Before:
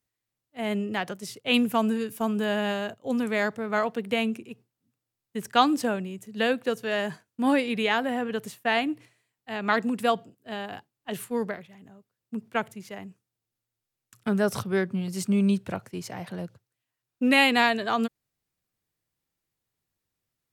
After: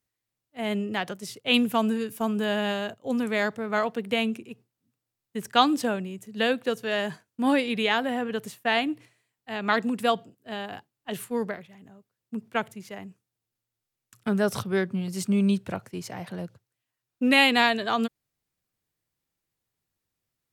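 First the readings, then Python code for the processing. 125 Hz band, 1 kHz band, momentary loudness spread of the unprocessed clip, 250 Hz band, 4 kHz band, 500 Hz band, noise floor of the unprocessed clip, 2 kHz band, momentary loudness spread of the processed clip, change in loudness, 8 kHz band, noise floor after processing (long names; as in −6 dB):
0.0 dB, 0.0 dB, 16 LU, 0.0 dB, +2.5 dB, 0.0 dB, below −85 dBFS, +0.5 dB, 16 LU, +0.5 dB, 0.0 dB, below −85 dBFS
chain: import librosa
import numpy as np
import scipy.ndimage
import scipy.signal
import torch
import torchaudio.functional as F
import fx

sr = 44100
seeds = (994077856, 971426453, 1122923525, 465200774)

y = fx.dynamic_eq(x, sr, hz=3500.0, q=2.6, threshold_db=-45.0, ratio=4.0, max_db=4)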